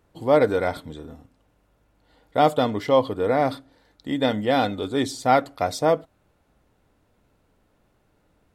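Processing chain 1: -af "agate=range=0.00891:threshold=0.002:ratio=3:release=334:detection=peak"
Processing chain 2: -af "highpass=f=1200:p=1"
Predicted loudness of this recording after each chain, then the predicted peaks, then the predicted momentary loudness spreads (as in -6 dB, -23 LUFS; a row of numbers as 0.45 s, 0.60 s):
-22.5 LUFS, -29.0 LUFS; -4.5 dBFS, -10.0 dBFS; 12 LU, 8 LU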